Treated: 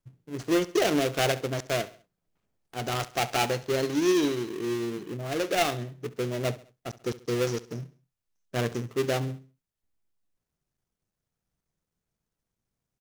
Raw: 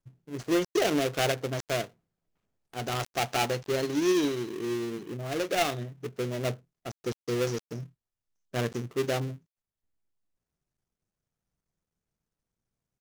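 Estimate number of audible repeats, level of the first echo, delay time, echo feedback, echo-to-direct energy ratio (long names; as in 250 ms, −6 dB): 3, −18.0 dB, 68 ms, 42%, −17.0 dB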